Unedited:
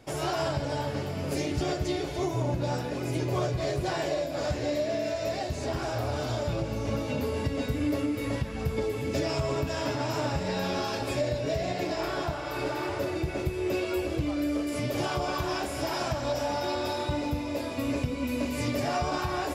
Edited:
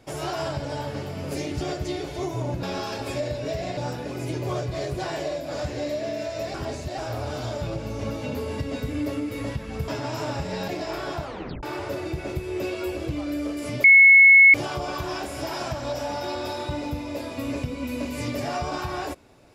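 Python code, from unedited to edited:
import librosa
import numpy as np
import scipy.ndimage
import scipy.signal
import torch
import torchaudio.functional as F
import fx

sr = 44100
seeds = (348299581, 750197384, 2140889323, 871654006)

y = fx.edit(x, sr, fx.reverse_span(start_s=5.4, length_s=0.44),
    fx.cut(start_s=8.74, length_s=1.1),
    fx.move(start_s=10.64, length_s=1.14, to_s=2.63),
    fx.tape_stop(start_s=12.34, length_s=0.39),
    fx.insert_tone(at_s=14.94, length_s=0.7, hz=2190.0, db=-8.5), tone=tone)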